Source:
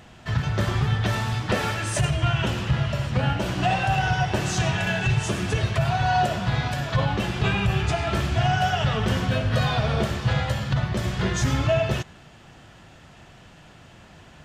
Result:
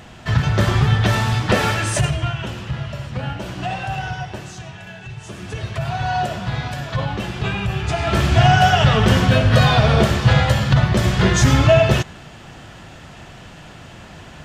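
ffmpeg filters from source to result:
ffmpeg -i in.wav -af "volume=28dB,afade=type=out:start_time=1.79:duration=0.58:silence=0.316228,afade=type=out:start_time=4:duration=0.63:silence=0.354813,afade=type=in:start_time=5.16:duration=0.86:silence=0.251189,afade=type=in:start_time=7.82:duration=0.54:silence=0.354813" out.wav

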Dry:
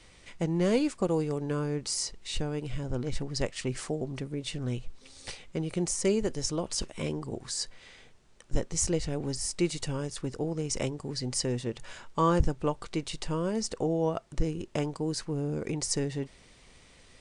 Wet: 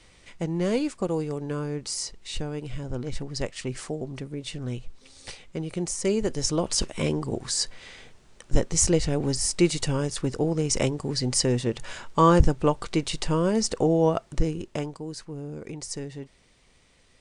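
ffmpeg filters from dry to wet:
ffmpeg -i in.wav -af "volume=7dB,afade=type=in:start_time=6.01:duration=0.66:silence=0.473151,afade=type=out:start_time=14.11:duration=0.92:silence=0.266073" out.wav

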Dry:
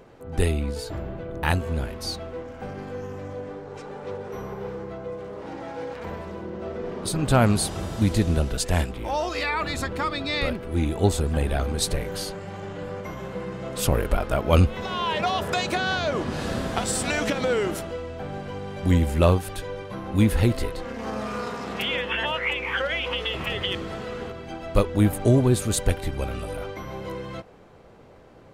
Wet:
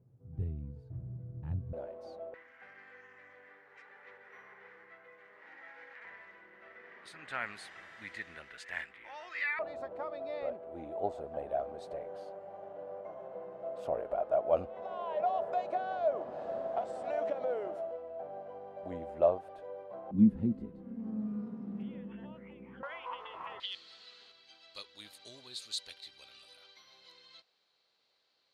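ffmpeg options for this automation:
ffmpeg -i in.wav -af "asetnsamples=nb_out_samples=441:pad=0,asendcmd='1.73 bandpass f 590;2.34 bandpass f 1900;9.59 bandpass f 650;20.11 bandpass f 210;22.83 bandpass f 1000;23.6 bandpass f 4200',bandpass=frequency=120:width_type=q:width=5.8:csg=0" out.wav

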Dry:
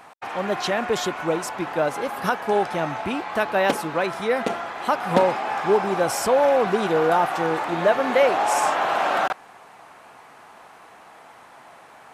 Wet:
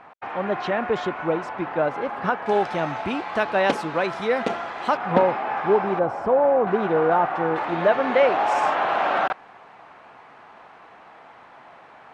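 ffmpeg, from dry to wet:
ffmpeg -i in.wav -af "asetnsamples=nb_out_samples=441:pad=0,asendcmd='2.46 lowpass f 5500;4.97 lowpass f 2400;5.99 lowpass f 1100;6.67 lowpass f 1900;7.56 lowpass f 3300',lowpass=2300" out.wav

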